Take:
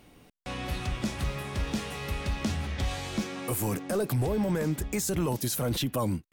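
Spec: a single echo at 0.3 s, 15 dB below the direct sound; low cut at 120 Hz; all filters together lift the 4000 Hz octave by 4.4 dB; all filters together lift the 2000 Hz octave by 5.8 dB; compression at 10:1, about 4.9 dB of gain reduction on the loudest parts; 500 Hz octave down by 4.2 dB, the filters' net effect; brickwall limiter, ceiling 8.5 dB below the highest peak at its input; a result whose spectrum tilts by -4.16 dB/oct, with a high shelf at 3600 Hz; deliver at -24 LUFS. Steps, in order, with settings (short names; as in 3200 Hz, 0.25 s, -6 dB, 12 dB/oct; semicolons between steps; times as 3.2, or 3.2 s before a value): HPF 120 Hz; bell 500 Hz -5.5 dB; bell 2000 Hz +7.5 dB; high shelf 3600 Hz -8.5 dB; bell 4000 Hz +8.5 dB; compressor 10:1, threshold -30 dBFS; limiter -27.5 dBFS; echo 0.3 s -15 dB; gain +12 dB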